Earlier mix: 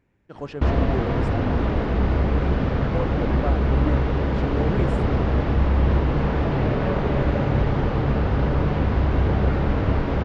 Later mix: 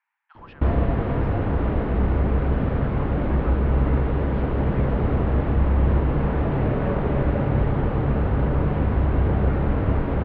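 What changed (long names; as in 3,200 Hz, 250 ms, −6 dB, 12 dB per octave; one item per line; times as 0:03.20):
speech: add Butterworth high-pass 830 Hz 72 dB per octave
master: add high-frequency loss of the air 390 metres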